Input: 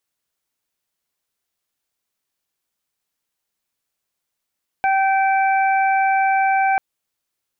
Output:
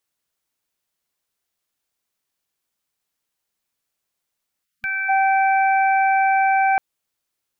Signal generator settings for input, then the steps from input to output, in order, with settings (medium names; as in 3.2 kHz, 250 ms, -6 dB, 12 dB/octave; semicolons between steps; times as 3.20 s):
steady additive tone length 1.94 s, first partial 775 Hz, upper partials -8/-10 dB, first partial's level -15 dB
time-frequency box 4.64–5.09 s, 230–1200 Hz -23 dB